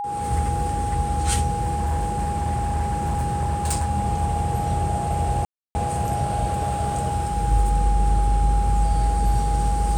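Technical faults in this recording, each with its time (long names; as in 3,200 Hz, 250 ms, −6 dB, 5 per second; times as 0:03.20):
whistle 820 Hz −25 dBFS
0:01.61–0:03.91: clipping −18.5 dBFS
0:05.45–0:05.75: drop-out 300 ms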